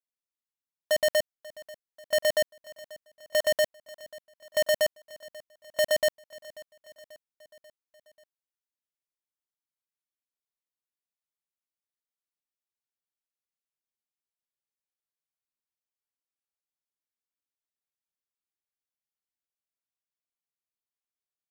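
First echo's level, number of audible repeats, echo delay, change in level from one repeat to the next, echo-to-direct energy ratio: -20.5 dB, 3, 538 ms, -5.0 dB, -19.0 dB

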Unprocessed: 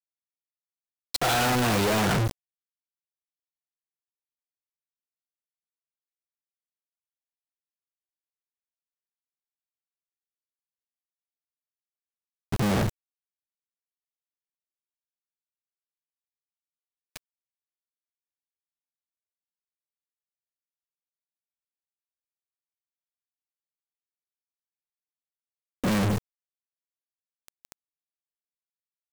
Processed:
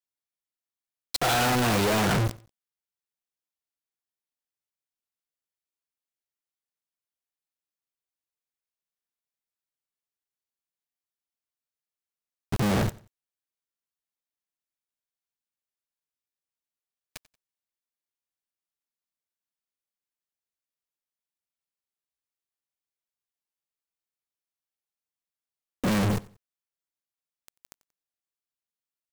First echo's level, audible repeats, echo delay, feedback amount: -21.5 dB, 2, 91 ms, 30%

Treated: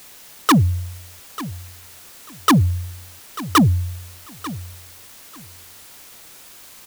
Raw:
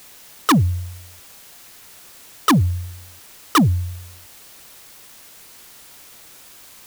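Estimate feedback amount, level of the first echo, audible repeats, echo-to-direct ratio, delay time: 19%, -16.0 dB, 2, -16.0 dB, 892 ms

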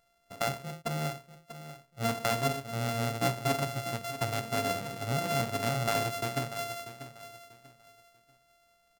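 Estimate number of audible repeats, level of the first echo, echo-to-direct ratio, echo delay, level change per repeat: 2, -13.0 dB, -12.5 dB, 640 ms, -11.5 dB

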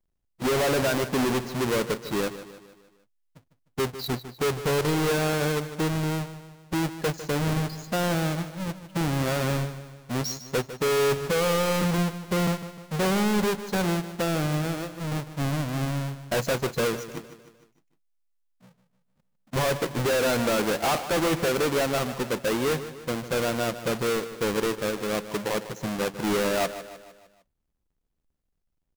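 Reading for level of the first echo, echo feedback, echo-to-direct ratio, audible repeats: -13.0 dB, 50%, -11.5 dB, 4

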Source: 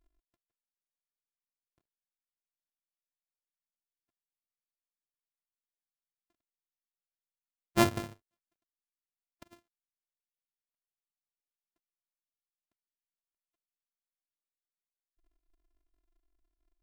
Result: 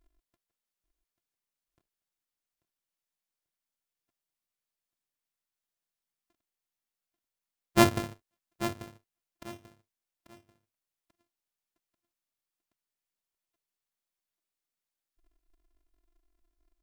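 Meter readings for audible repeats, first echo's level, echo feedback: 2, -12.0 dB, 26%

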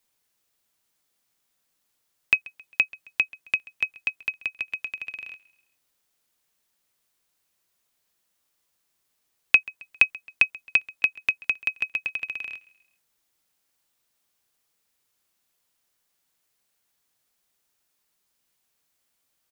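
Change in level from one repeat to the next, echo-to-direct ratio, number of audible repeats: -6.5 dB, -21.5 dB, 2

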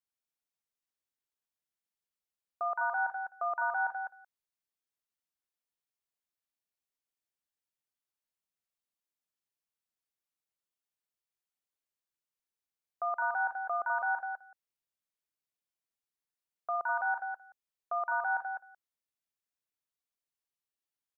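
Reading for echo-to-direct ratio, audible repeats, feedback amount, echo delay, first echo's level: -4.5 dB, 5, no regular repeats, 52 ms, -14.0 dB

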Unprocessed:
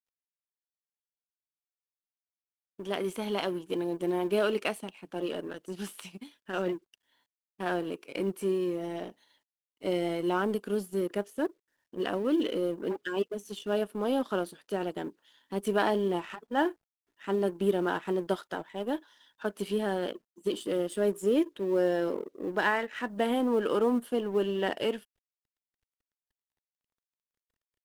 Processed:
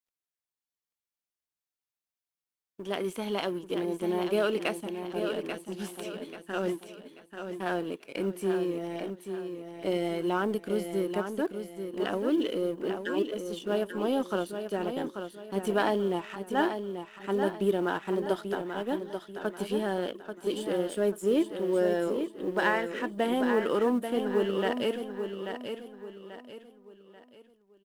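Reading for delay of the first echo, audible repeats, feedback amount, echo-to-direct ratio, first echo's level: 837 ms, 4, 36%, -7.0 dB, -7.5 dB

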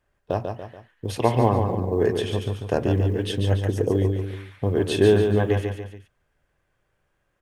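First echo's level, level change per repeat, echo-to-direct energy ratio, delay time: -5.5 dB, -7.0 dB, -4.5 dB, 143 ms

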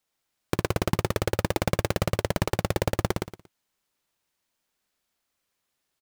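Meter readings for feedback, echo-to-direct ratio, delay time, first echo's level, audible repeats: 24%, -2.5 dB, 116 ms, -3.0 dB, 3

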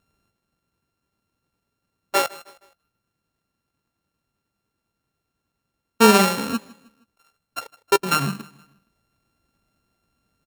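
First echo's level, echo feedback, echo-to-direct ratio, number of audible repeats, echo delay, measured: -22.0 dB, 43%, -21.0 dB, 2, 157 ms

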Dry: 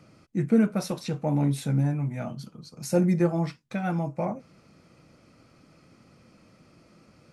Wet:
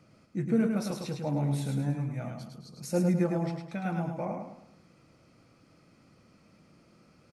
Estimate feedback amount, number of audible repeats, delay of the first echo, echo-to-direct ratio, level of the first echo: 39%, 4, 106 ms, -4.0 dB, -4.5 dB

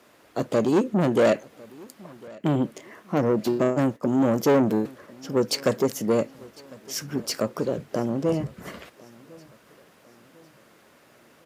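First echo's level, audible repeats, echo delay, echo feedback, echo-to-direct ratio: -23.5 dB, 2, 1052 ms, 44%, -22.5 dB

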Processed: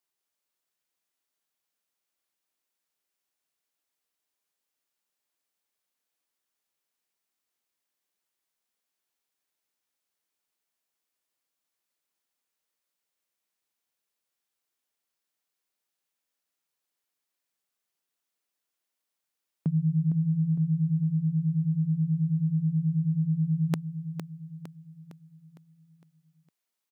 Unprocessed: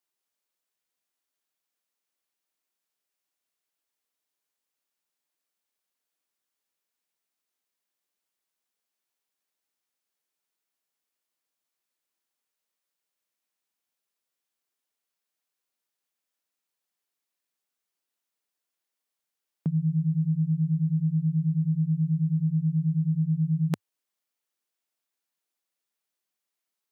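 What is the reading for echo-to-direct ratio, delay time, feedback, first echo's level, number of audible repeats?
-8.0 dB, 458 ms, 49%, -9.0 dB, 5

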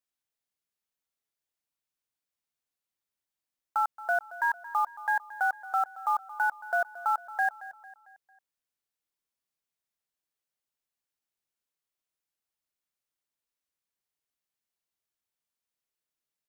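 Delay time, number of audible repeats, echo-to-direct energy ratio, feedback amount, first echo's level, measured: 225 ms, 3, -15.5 dB, 47%, -16.5 dB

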